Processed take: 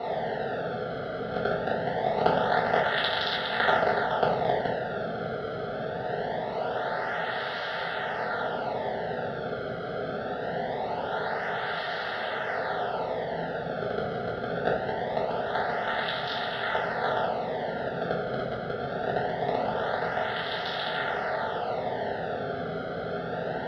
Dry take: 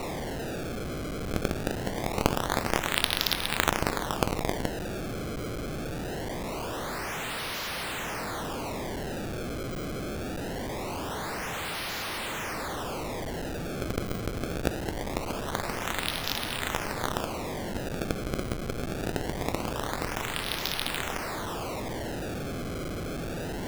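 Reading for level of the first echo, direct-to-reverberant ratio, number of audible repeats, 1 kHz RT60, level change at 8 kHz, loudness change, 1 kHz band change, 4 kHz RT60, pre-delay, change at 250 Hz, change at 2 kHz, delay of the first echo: none, -7.5 dB, none, 0.40 s, under -25 dB, +2.5 dB, +6.0 dB, 0.30 s, 4 ms, -3.5 dB, +3.5 dB, none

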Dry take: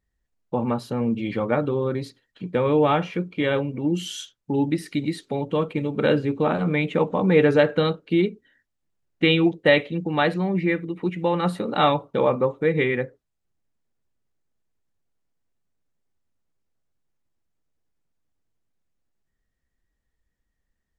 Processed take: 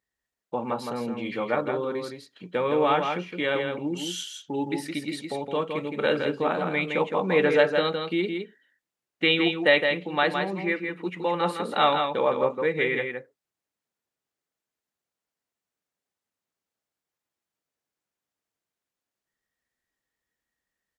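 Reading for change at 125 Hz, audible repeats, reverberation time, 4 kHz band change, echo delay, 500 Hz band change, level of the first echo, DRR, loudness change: -11.0 dB, 1, none, +1.0 dB, 0.164 s, -3.0 dB, -5.5 dB, none, -3.0 dB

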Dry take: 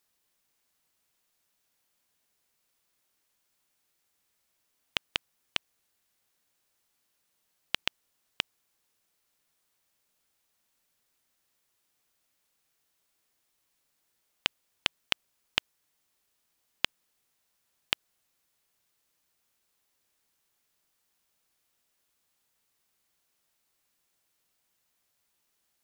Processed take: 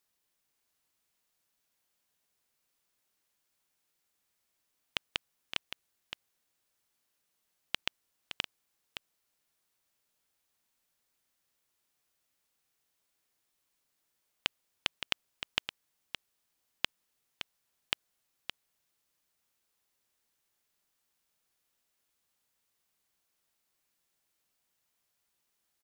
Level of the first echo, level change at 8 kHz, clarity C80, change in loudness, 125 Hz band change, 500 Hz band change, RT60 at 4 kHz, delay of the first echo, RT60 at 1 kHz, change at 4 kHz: -9.0 dB, -3.5 dB, none, -5.5 dB, -3.5 dB, -3.5 dB, none, 0.567 s, none, -3.5 dB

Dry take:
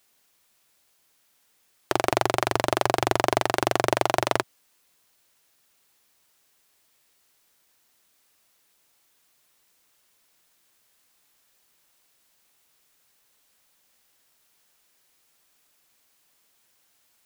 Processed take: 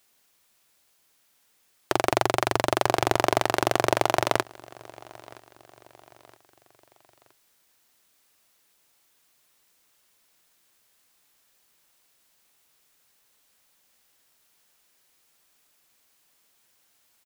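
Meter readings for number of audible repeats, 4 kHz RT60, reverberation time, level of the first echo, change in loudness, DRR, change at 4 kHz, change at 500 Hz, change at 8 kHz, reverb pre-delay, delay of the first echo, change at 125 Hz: 2, none, none, -23.0 dB, 0.0 dB, none, 0.0 dB, 0.0 dB, 0.0 dB, none, 0.969 s, 0.0 dB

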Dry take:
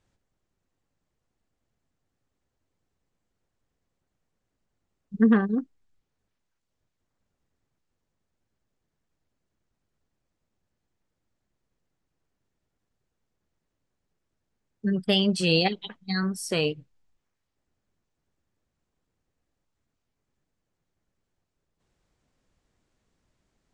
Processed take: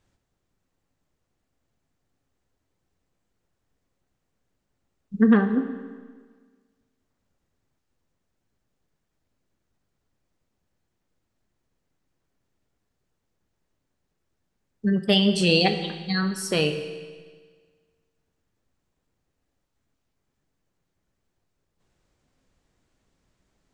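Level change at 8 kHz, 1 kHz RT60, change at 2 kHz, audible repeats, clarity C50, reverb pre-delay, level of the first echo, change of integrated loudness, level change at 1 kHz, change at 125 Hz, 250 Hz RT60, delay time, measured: +3.0 dB, 1.6 s, +3.5 dB, none, 9.5 dB, 11 ms, none, +2.5 dB, +3.0 dB, +3.0 dB, 1.6 s, none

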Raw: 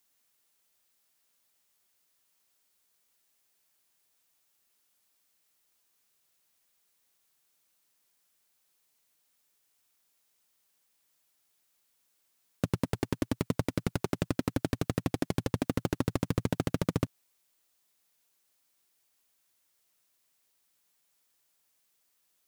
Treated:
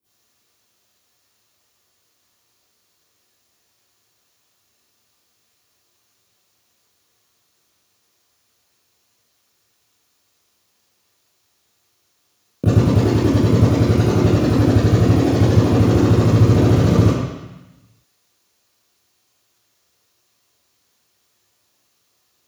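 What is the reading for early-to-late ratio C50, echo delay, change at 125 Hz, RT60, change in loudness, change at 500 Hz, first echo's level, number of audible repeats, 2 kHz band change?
-7.0 dB, none, +20.5 dB, 1.0 s, +17.5 dB, +16.5 dB, none, none, +11.5 dB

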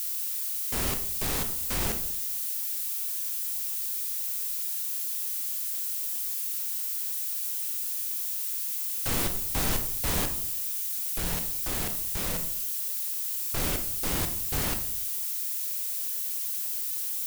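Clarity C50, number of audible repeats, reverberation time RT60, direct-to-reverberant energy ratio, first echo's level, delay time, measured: 9.5 dB, none, 0.65 s, 6.0 dB, none, none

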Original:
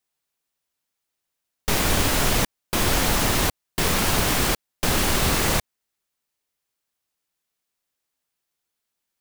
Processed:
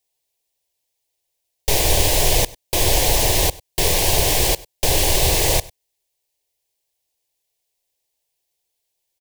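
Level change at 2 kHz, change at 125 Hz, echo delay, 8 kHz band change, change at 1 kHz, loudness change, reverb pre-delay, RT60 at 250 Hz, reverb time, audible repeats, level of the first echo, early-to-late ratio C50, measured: -0.5 dB, +3.0 dB, 98 ms, +5.5 dB, +0.5 dB, +4.0 dB, none, none, none, 1, -22.0 dB, none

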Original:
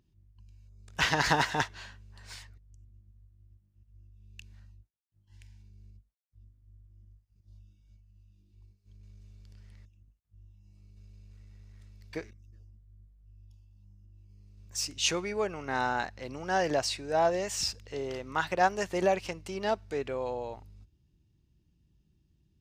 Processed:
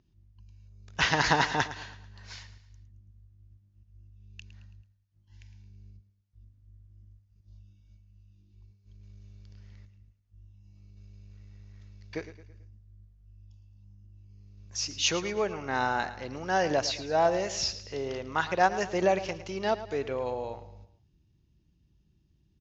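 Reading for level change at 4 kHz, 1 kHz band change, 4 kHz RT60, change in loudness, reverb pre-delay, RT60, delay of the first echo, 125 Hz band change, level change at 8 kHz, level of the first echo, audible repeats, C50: +1.5 dB, +1.5 dB, none, +1.5 dB, none, none, 0.11 s, +2.0 dB, +0.5 dB, -14.0 dB, 3, none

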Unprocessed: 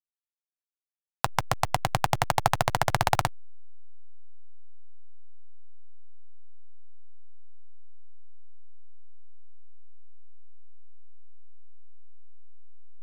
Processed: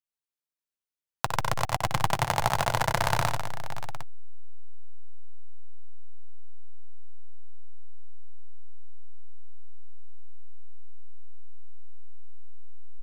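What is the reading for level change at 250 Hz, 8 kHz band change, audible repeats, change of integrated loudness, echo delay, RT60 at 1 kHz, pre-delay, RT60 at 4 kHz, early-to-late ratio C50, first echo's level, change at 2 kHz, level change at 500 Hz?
0.0 dB, 0.0 dB, 5, -1.0 dB, 60 ms, none, none, none, none, -8.5 dB, +0.5 dB, -0.5 dB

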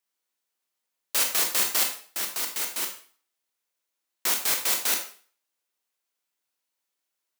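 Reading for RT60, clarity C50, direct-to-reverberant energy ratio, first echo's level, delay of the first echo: 0.45 s, 7.5 dB, 2.5 dB, none, none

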